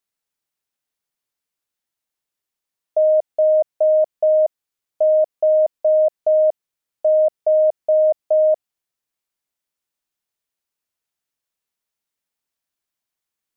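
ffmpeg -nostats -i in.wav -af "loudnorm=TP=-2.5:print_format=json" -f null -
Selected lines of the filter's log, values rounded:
"input_i" : "-17.5",
"input_tp" : "-10.9",
"input_lra" : "6.3",
"input_thresh" : "-27.6",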